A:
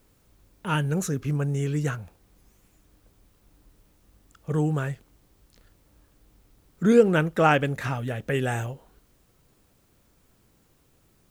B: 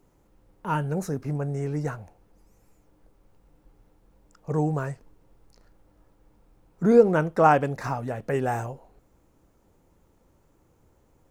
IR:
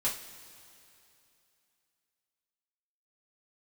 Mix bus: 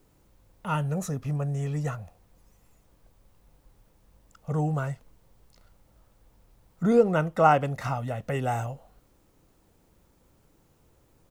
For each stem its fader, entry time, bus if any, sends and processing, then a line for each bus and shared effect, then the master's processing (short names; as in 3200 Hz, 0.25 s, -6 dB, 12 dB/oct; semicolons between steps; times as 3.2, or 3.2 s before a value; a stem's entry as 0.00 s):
-4.5 dB, 0.00 s, no send, compressor 1.5:1, threshold -33 dBFS, peak gain reduction 8 dB
-2.5 dB, 1.7 ms, no send, dry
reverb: off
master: dry